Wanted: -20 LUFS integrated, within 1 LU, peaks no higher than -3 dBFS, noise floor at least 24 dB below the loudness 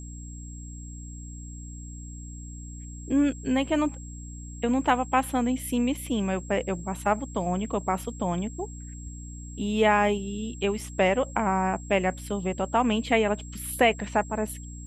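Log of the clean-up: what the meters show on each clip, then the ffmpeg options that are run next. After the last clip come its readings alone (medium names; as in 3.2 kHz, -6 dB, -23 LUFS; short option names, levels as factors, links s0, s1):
hum 60 Hz; highest harmonic 300 Hz; hum level -38 dBFS; steady tone 7.6 kHz; tone level -46 dBFS; loudness -26.5 LUFS; peak level -7.5 dBFS; loudness target -20.0 LUFS
-> -af "bandreject=f=60:t=h:w=6,bandreject=f=120:t=h:w=6,bandreject=f=180:t=h:w=6,bandreject=f=240:t=h:w=6,bandreject=f=300:t=h:w=6"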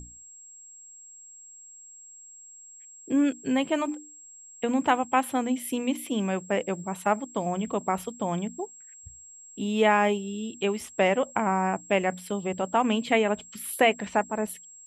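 hum not found; steady tone 7.6 kHz; tone level -46 dBFS
-> -af "bandreject=f=7600:w=30"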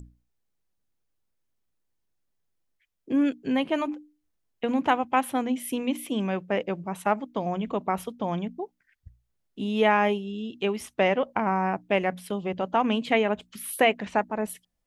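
steady tone not found; loudness -27.0 LUFS; peak level -8.0 dBFS; loudness target -20.0 LUFS
-> -af "volume=2.24,alimiter=limit=0.708:level=0:latency=1"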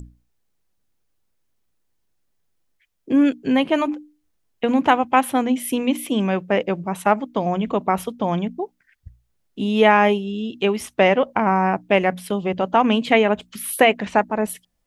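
loudness -20.0 LUFS; peak level -3.0 dBFS; noise floor -70 dBFS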